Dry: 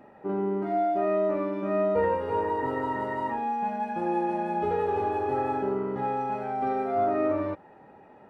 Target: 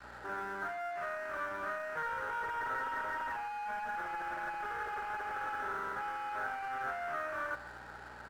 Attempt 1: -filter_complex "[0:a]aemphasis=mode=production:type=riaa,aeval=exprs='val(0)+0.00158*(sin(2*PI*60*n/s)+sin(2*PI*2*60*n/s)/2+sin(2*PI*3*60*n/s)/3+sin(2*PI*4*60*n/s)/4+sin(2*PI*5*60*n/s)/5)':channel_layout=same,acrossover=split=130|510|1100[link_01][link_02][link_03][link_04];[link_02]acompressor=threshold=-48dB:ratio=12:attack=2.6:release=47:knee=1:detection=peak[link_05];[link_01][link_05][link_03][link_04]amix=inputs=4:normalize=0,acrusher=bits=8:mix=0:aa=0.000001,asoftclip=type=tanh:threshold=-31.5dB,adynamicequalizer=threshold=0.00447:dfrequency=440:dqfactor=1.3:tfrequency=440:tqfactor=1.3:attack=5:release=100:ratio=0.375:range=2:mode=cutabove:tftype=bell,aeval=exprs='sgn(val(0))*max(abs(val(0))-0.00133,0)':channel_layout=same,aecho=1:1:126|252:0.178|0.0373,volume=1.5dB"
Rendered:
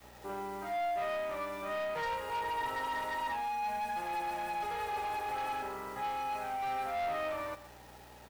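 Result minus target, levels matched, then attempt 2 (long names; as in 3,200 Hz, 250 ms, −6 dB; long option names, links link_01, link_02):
2,000 Hz band −5.5 dB; soft clipping: distortion −7 dB
-filter_complex "[0:a]aemphasis=mode=production:type=riaa,aeval=exprs='val(0)+0.00158*(sin(2*PI*60*n/s)+sin(2*PI*2*60*n/s)/2+sin(2*PI*3*60*n/s)/3+sin(2*PI*4*60*n/s)/4+sin(2*PI*5*60*n/s)/5)':channel_layout=same,acrossover=split=130|510|1100[link_01][link_02][link_03][link_04];[link_02]acompressor=threshold=-48dB:ratio=12:attack=2.6:release=47:knee=1:detection=peak[link_05];[link_01][link_05][link_03][link_04]amix=inputs=4:normalize=0,acrusher=bits=8:mix=0:aa=0.000001,asoftclip=type=tanh:threshold=-42dB,adynamicequalizer=threshold=0.00447:dfrequency=440:dqfactor=1.3:tfrequency=440:tqfactor=1.3:attack=5:release=100:ratio=0.375:range=2:mode=cutabove:tftype=bell,lowpass=frequency=1500:width_type=q:width=9.1,aeval=exprs='sgn(val(0))*max(abs(val(0))-0.00133,0)':channel_layout=same,aecho=1:1:126|252:0.178|0.0373,volume=1.5dB"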